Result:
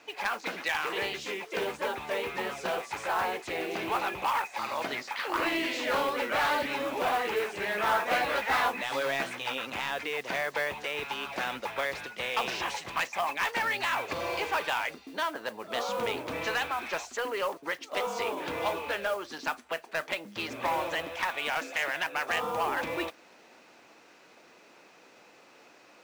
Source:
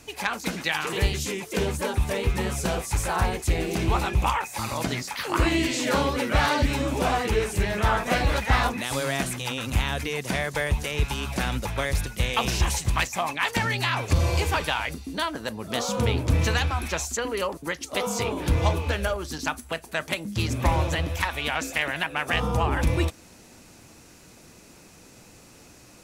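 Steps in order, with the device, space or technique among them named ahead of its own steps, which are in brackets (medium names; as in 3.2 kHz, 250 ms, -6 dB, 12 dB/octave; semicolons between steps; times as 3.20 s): carbon microphone (band-pass 470–3200 Hz; saturation -21 dBFS, distortion -14 dB; modulation noise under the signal 21 dB); 7.66–9.58 s: doubling 15 ms -6 dB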